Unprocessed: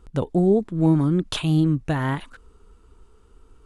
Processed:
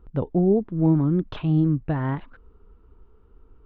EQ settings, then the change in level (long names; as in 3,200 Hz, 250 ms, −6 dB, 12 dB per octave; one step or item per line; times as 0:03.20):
high-frequency loss of the air 140 metres
head-to-tape spacing loss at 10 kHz 33 dB
0.0 dB